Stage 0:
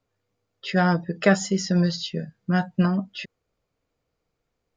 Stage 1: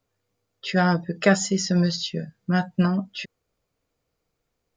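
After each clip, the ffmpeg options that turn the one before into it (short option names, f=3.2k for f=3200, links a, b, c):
-af "highshelf=f=6k:g=7"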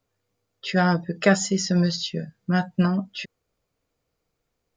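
-af anull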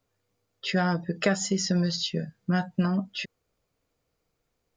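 -af "acompressor=threshold=-22dB:ratio=3"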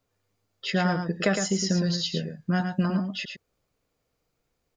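-af "aecho=1:1:110:0.473"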